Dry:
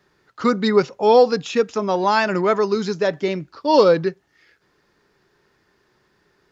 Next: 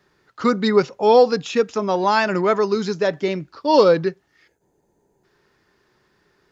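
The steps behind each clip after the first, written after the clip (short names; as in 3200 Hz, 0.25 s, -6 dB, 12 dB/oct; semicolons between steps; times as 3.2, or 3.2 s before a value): spectral gain 4.47–5.24, 1000–6000 Hz -17 dB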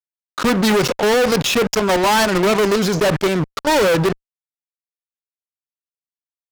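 level quantiser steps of 20 dB; transient shaper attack -1 dB, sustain +4 dB; fuzz box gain 39 dB, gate -41 dBFS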